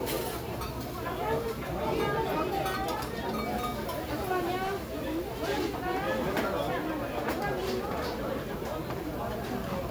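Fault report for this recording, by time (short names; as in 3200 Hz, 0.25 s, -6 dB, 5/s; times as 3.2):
4.63–5.38 clipped -28 dBFS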